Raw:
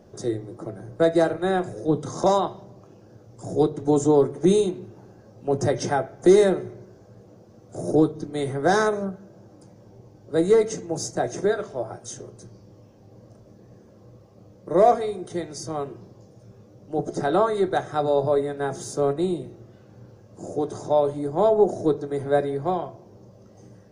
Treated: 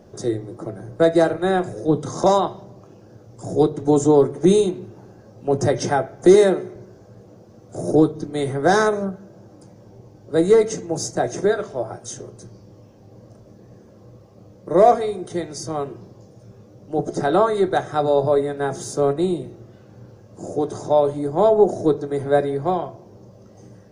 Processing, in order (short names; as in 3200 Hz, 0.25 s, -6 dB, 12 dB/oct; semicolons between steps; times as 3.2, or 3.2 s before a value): 6.34–6.76 HPF 170 Hz; gain +3.5 dB